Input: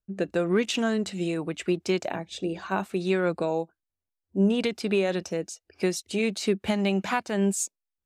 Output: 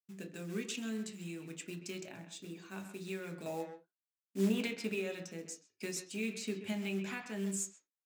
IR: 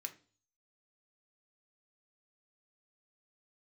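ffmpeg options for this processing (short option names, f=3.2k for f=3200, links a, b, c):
-filter_complex "[0:a]agate=range=-23dB:threshold=-50dB:ratio=16:detection=peak,asetnsamples=n=441:p=0,asendcmd='3.46 equalizer g -2;4.89 equalizer g -10',equalizer=f=920:w=0.37:g=-14.5,acrusher=bits=5:mode=log:mix=0:aa=0.000001,asplit=2[a][b];[b]adelay=130,highpass=300,lowpass=3.4k,asoftclip=type=hard:threshold=-24dB,volume=-9dB[c];[a][c]amix=inputs=2:normalize=0[d];[1:a]atrim=start_sample=2205,afade=t=out:st=0.14:d=0.01,atrim=end_sample=6615[e];[d][e]afir=irnorm=-1:irlink=0,adynamicequalizer=threshold=0.00224:dfrequency=3900:dqfactor=0.7:tfrequency=3900:tqfactor=0.7:attack=5:release=100:ratio=0.375:range=3:mode=cutabove:tftype=highshelf,volume=-2.5dB"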